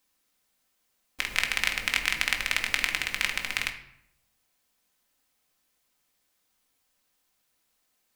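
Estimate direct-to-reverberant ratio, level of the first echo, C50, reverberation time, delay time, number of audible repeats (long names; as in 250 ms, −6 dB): 3.0 dB, no echo audible, 10.0 dB, 0.75 s, no echo audible, no echo audible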